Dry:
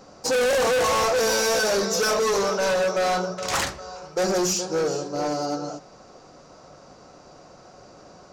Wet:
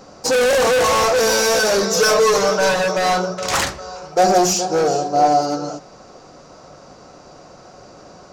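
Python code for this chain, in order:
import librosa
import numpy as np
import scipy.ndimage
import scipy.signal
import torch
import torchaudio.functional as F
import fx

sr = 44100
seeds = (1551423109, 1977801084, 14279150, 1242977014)

y = fx.comb(x, sr, ms=6.5, depth=0.6, at=(1.96, 3.13))
y = fx.peak_eq(y, sr, hz=720.0, db=14.0, octaves=0.23, at=(4.12, 5.41))
y = y * 10.0 ** (5.5 / 20.0)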